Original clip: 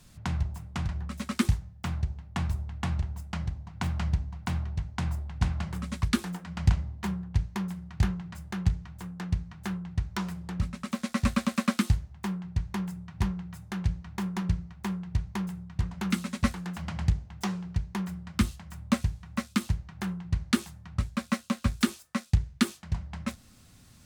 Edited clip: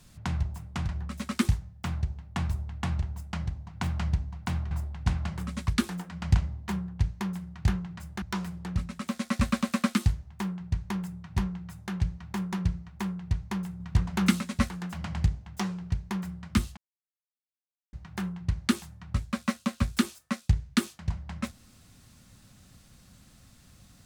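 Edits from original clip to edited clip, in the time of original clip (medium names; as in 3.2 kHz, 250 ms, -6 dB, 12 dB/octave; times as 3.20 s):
4.71–5.06 s: delete
8.57–10.06 s: delete
15.64–16.25 s: gain +5 dB
18.61–19.77 s: mute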